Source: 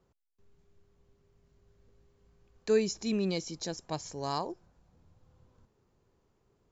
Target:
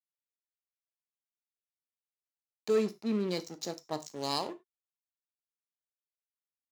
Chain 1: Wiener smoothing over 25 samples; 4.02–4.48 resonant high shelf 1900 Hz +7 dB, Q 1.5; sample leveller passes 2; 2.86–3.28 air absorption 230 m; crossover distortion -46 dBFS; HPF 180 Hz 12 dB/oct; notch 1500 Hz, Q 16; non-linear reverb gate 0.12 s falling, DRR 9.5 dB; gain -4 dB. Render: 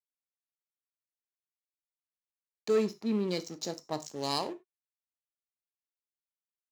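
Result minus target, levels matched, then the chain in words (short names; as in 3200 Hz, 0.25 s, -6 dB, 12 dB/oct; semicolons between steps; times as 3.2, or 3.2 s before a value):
crossover distortion: distortion -7 dB
Wiener smoothing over 25 samples; 4.02–4.48 resonant high shelf 1900 Hz +7 dB, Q 1.5; sample leveller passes 2; 2.86–3.28 air absorption 230 m; crossover distortion -38 dBFS; HPF 180 Hz 12 dB/oct; notch 1500 Hz, Q 16; non-linear reverb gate 0.12 s falling, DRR 9.5 dB; gain -4 dB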